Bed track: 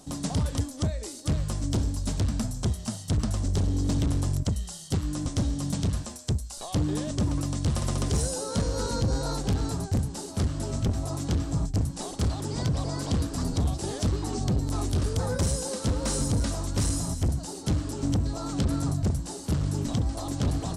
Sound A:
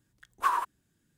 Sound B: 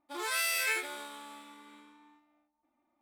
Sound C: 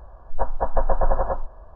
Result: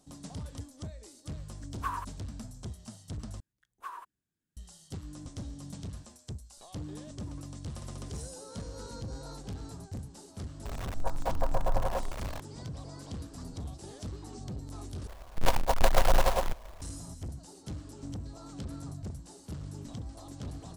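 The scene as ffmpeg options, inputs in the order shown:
-filter_complex "[1:a]asplit=2[a][b];[3:a]asplit=2[c][d];[0:a]volume=-14dB[e];[c]aeval=exprs='val(0)+0.5*0.0708*sgn(val(0))':c=same[f];[d]acrusher=bits=2:mode=log:mix=0:aa=0.000001[g];[e]asplit=3[h][i][j];[h]atrim=end=3.404[k];[b]atrim=end=1.17,asetpts=PTS-STARTPTS,volume=-16dB[l];[i]atrim=start=4.566:end=15.074[m];[g]atrim=end=1.75,asetpts=PTS-STARTPTS,volume=-4dB[n];[j]atrim=start=16.816[o];[a]atrim=end=1.17,asetpts=PTS-STARTPTS,volume=-8.5dB,afade=t=in:d=0.004:c=hsin,afade=t=out:st=1.166:d=0.004:c=hsin,adelay=1400[p];[f]atrim=end=1.75,asetpts=PTS-STARTPTS,volume=-10dB,afade=t=in:d=0.004:c=hsin,afade=t=out:st=1.746:d=0.004:c=hsin,adelay=10650[q];[k][l]acrossfade=d=0.004:c1=hsin:c2=hsin[r];[r][m]acrossfade=d=0.004:c1=hsin:c2=hsin[s];[s][n]acrossfade=d=0.004:c1=hsin:c2=hsin[t];[t][o]acrossfade=d=0.004:c1=hsin:c2=hsin[u];[u][p][q]amix=inputs=3:normalize=0"

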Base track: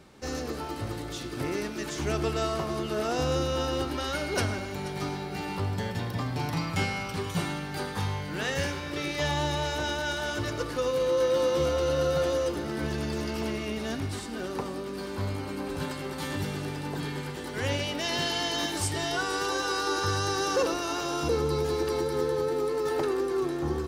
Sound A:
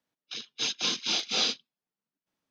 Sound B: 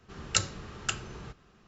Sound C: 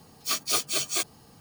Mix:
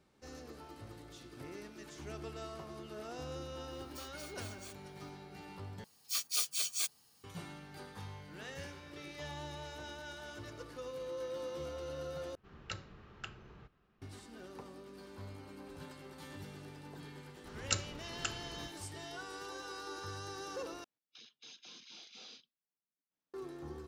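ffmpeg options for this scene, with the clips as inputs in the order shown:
-filter_complex "[3:a]asplit=2[a][b];[2:a]asplit=2[c][d];[0:a]volume=-16.5dB[e];[a]acompressor=threshold=-38dB:ratio=5:attack=8.3:release=377:knee=1:detection=rms[f];[b]tiltshelf=f=1.3k:g=-9[g];[c]lowpass=3.3k[h];[1:a]acompressor=threshold=-44dB:ratio=4:attack=5.5:release=27:knee=1:detection=rms[i];[e]asplit=4[j][k][l][m];[j]atrim=end=5.844[n];[g]atrim=end=1.4,asetpts=PTS-STARTPTS,volume=-15dB[o];[k]atrim=start=7.236:end=12.354[p];[h]atrim=end=1.67,asetpts=PTS-STARTPTS,volume=-12dB[q];[l]atrim=start=14.016:end=20.844[r];[i]atrim=end=2.5,asetpts=PTS-STARTPTS,volume=-11dB[s];[m]atrim=start=23.336[t];[f]atrim=end=1.4,asetpts=PTS-STARTPTS,volume=-11dB,afade=t=in:d=0.004:c=hsin,afade=t=out:st=1.396:d=0.004:c=hsin,adelay=3700[u];[d]atrim=end=1.67,asetpts=PTS-STARTPTS,volume=-7dB,afade=t=in:d=0.004:c=hsin,afade=t=out:st=1.666:d=0.004:c=hsin,adelay=17360[v];[n][o]acrossfade=d=0.004:c1=hsin:c2=hsin[w];[w][p]acrossfade=d=0.004:c1=hsin:c2=hsin[x];[x][q]acrossfade=d=0.004:c1=hsin:c2=hsin[y];[y][r]acrossfade=d=0.004:c1=hsin:c2=hsin[z];[z][s]acrossfade=d=0.004:c1=hsin:c2=hsin[aa];[aa][t]acrossfade=d=0.004:c1=hsin:c2=hsin[ab];[ab][u][v]amix=inputs=3:normalize=0"

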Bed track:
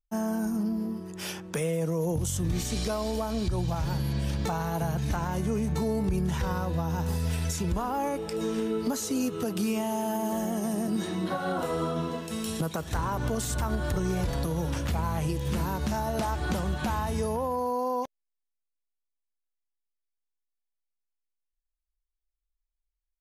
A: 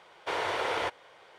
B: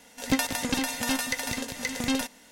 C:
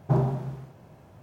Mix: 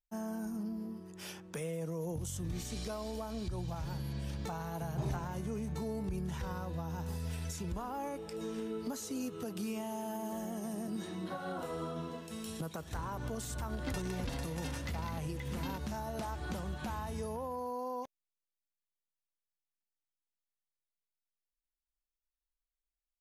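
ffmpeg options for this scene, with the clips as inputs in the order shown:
-filter_complex "[0:a]volume=-10dB[a];[2:a]afwtdn=0.0126[b];[3:a]atrim=end=1.22,asetpts=PTS-STARTPTS,volume=-15dB,afade=t=in:d=0.004:c=hsin,afade=t=out:st=1.216:d=0.004:c=hsin,adelay=4880[c];[b]atrim=end=2.51,asetpts=PTS-STARTPTS,volume=-17dB,afade=t=in:d=0.004:c=hsin,afade=t=out:st=2.506:d=0.004:c=hsin,adelay=13550[d];[a][c][d]amix=inputs=3:normalize=0"

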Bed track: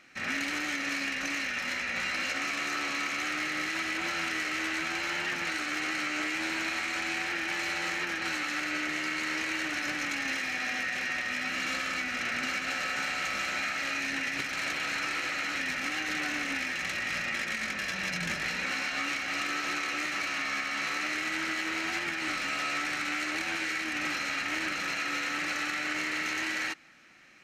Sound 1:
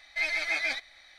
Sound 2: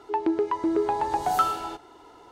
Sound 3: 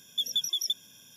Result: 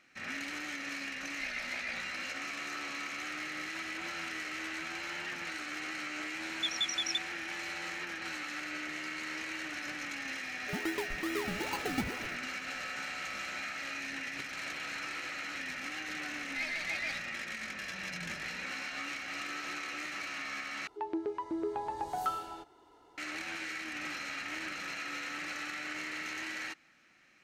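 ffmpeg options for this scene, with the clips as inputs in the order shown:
-filter_complex "[1:a]asplit=2[a][b];[2:a]asplit=2[c][d];[0:a]volume=-7.5dB[e];[a]aeval=exprs='val(0)*sin(2*PI*31*n/s)':c=same[f];[3:a]aresample=22050,aresample=44100[g];[c]acrusher=samples=34:mix=1:aa=0.000001:lfo=1:lforange=20.4:lforate=2.4[h];[e]asplit=2[i][j];[i]atrim=end=20.874[k];[d]atrim=end=2.31,asetpts=PTS-STARTPTS,volume=-11dB[l];[j]atrim=start=23.176[m];[f]atrim=end=1.18,asetpts=PTS-STARTPTS,volume=-9.5dB,afade=t=in:d=0.004:c=hsin,afade=t=out:st=1.176:d=0.004:c=hsin,adelay=1220[n];[g]atrim=end=1.16,asetpts=PTS-STARTPTS,volume=-4.5dB,afade=t=in:d=0.004:c=hsin,afade=t=out:st=1.156:d=0.004:c=hsin,adelay=6450[o];[h]atrim=end=2.31,asetpts=PTS-STARTPTS,volume=-12dB,afade=t=in:d=0.004:c=hsin,afade=t=out:st=2.306:d=0.004:c=hsin,adelay=10590[p];[b]atrim=end=1.18,asetpts=PTS-STARTPTS,volume=-8.5dB,afade=t=in:d=0.004:c=hsin,afade=t=out:st=1.176:d=0.004:c=hsin,adelay=16390[q];[k][l]acrossfade=d=0.004:c1=hsin:c2=hsin[r];[r][m]acrossfade=d=0.004:c1=hsin:c2=hsin[s];[s][n][o][p][q]amix=inputs=5:normalize=0"

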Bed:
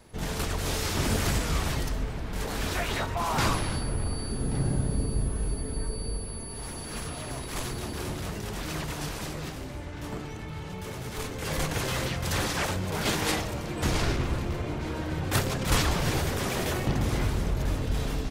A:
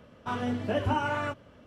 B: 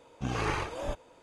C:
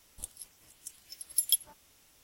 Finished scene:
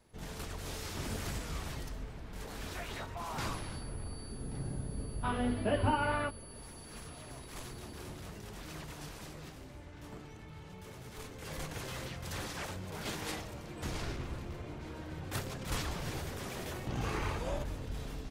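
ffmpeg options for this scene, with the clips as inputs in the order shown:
-filter_complex "[0:a]volume=-12dB[a];[1:a]aresample=11025,aresample=44100[b];[2:a]acompressor=threshold=-32dB:ratio=6:attack=3.2:release=140:knee=1:detection=peak[c];[b]atrim=end=1.66,asetpts=PTS-STARTPTS,volume=-2.5dB,afade=t=in:d=0.004:c=hsin,afade=t=out:st=1.656:d=0.004:c=hsin,adelay=219177S[d];[c]atrim=end=1.22,asetpts=PTS-STARTPTS,volume=-1dB,afade=t=in:d=0.004:c=hsin,afade=t=out:st=1.216:d=0.004:c=hsin,adelay=16690[e];[a][d][e]amix=inputs=3:normalize=0"

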